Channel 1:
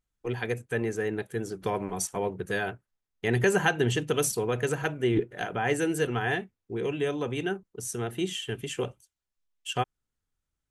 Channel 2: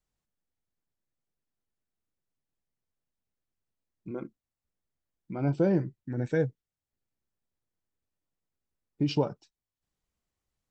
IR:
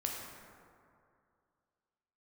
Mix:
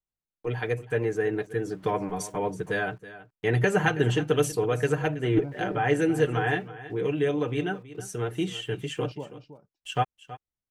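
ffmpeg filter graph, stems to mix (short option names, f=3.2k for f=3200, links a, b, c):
-filter_complex "[0:a]aecho=1:1:6.6:0.6,aeval=exprs='val(0)*gte(abs(val(0)),0.002)':c=same,adelay=200,volume=1dB,asplit=2[a][b];[b]volume=-16dB[c];[1:a]volume=-10.5dB,asplit=2[d][e];[e]volume=-11.5dB[f];[c][f]amix=inputs=2:normalize=0,aecho=0:1:325:1[g];[a][d][g]amix=inputs=3:normalize=0,highshelf=f=4.6k:g=-10.5"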